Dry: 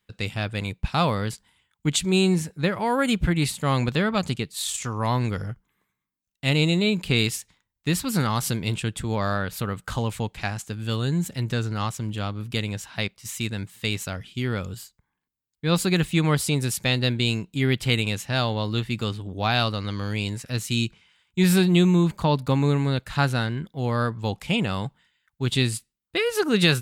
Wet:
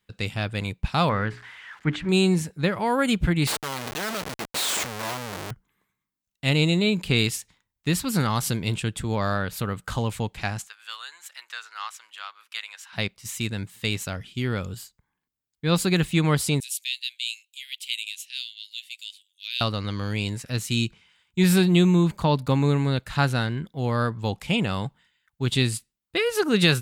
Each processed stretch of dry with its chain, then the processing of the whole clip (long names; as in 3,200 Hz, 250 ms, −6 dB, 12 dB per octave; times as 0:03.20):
0:01.09–0:02.09: spike at every zero crossing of −26.5 dBFS + low-pass with resonance 1,700 Hz, resonance Q 2.5 + mains-hum notches 60/120/180/240/300/360/420 Hz
0:03.47–0:05.51: comparator with hysteresis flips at −33 dBFS + high-pass filter 570 Hz 6 dB per octave
0:10.67–0:12.93: high-pass filter 1,100 Hz 24 dB per octave + high-shelf EQ 3,700 Hz −7 dB
0:16.60–0:19.61: Butterworth high-pass 2,700 Hz + parametric band 5,000 Hz −5.5 dB 0.75 octaves
whole clip: no processing